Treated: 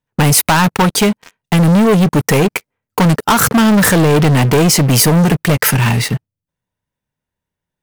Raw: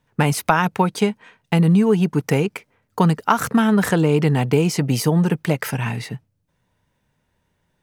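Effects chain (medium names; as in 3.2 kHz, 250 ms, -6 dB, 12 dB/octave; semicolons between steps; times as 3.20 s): waveshaping leveller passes 5; treble shelf 8.2 kHz +7 dB; trim -4 dB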